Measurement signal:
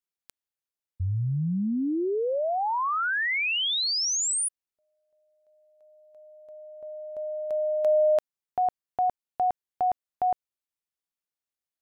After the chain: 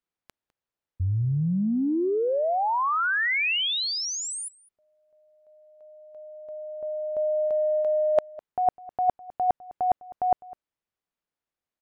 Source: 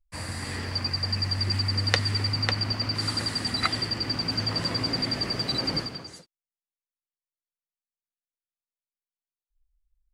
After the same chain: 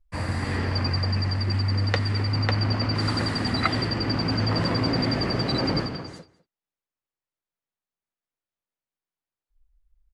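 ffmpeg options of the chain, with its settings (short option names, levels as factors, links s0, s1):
-filter_complex "[0:a]lowpass=f=1500:p=1,areverse,acompressor=threshold=0.0158:ratio=12:attack=93:release=31:knee=1:detection=peak,areverse,asplit=2[s0][s1];[s1]adelay=204.1,volume=0.1,highshelf=f=4000:g=-4.59[s2];[s0][s2]amix=inputs=2:normalize=0,volume=2.51"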